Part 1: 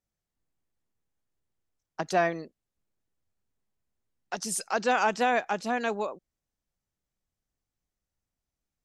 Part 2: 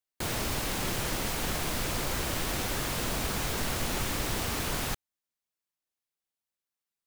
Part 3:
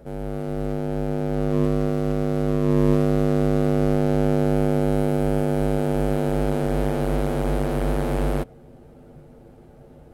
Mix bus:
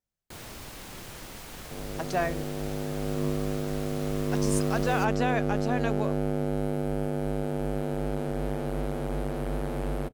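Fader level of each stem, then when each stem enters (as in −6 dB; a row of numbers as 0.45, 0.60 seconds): −3.5, −11.0, −8.0 decibels; 0.00, 0.10, 1.65 seconds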